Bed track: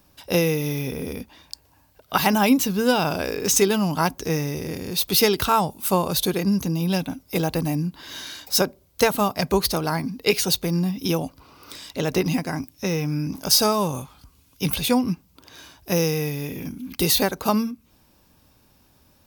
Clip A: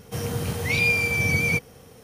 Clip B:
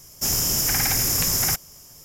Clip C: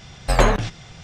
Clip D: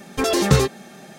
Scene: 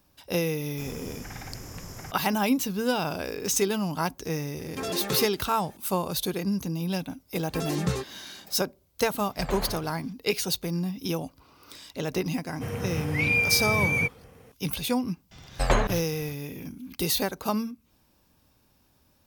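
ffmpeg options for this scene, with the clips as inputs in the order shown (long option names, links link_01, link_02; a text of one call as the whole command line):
ffmpeg -i bed.wav -i cue0.wav -i cue1.wav -i cue2.wav -i cue3.wav -filter_complex "[4:a]asplit=2[link_01][link_02];[3:a]asplit=2[link_03][link_04];[0:a]volume=-6.5dB[link_05];[2:a]lowpass=frequency=1300:poles=1[link_06];[link_01]highpass=220[link_07];[link_03]aecho=1:1:134:0.668[link_08];[1:a]highshelf=frequency=3100:width_type=q:width=1.5:gain=-7.5[link_09];[link_06]atrim=end=2.04,asetpts=PTS-STARTPTS,volume=-11dB,afade=type=in:duration=0.004:curve=hsin,afade=type=out:start_time=2.036:duration=0.004:curve=hsin,adelay=560[link_10];[link_07]atrim=end=1.18,asetpts=PTS-STARTPTS,volume=-11.5dB,afade=type=in:duration=0.004:curve=hsin,afade=type=out:start_time=1.176:duration=0.004:curve=hsin,adelay=4590[link_11];[link_02]atrim=end=1.18,asetpts=PTS-STARTPTS,volume=-13dB,afade=type=in:duration=0.004:curve=hsin,afade=type=out:start_time=1.176:duration=0.004:curve=hsin,adelay=7360[link_12];[link_08]atrim=end=1.03,asetpts=PTS-STARTPTS,volume=-18dB,afade=type=in:duration=0.004:curve=hsin,afade=type=out:start_time=1.026:duration=0.004:curve=hsin,adelay=9100[link_13];[link_09]atrim=end=2.03,asetpts=PTS-STARTPTS,volume=-3.5dB,afade=type=in:duration=0.004:curve=hsin,afade=type=out:start_time=2.026:duration=0.004:curve=hsin,adelay=12490[link_14];[link_04]atrim=end=1.03,asetpts=PTS-STARTPTS,volume=-6.5dB,afade=type=in:duration=0.004:curve=hsin,afade=type=out:start_time=1.026:duration=0.004:curve=hsin,adelay=15310[link_15];[link_05][link_10][link_11][link_12][link_13][link_14][link_15]amix=inputs=7:normalize=0" out.wav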